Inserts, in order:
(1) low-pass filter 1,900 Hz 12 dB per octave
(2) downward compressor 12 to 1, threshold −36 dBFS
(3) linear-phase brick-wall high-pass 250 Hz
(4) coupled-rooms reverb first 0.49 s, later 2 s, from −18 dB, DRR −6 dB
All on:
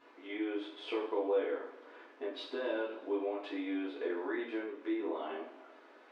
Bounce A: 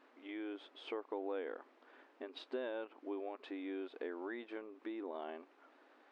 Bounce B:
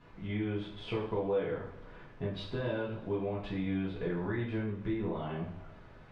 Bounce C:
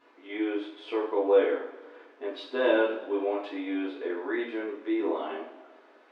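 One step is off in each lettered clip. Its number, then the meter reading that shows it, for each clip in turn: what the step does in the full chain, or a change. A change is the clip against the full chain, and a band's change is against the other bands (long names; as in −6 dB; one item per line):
4, change in integrated loudness −7.5 LU
3, 250 Hz band +2.5 dB
2, average gain reduction 4.0 dB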